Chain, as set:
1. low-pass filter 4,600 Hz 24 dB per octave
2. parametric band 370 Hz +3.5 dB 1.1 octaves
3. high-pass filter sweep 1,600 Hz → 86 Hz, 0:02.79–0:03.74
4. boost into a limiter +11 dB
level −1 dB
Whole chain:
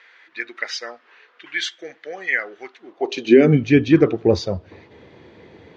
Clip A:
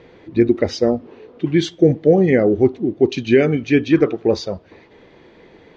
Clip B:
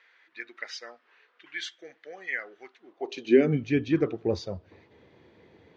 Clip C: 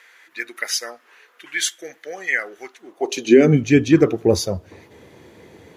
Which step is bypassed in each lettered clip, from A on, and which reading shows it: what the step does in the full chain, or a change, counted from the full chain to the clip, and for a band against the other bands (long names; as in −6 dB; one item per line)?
3, 2 kHz band −6.0 dB
4, change in crest factor +4.0 dB
1, 4 kHz band +2.0 dB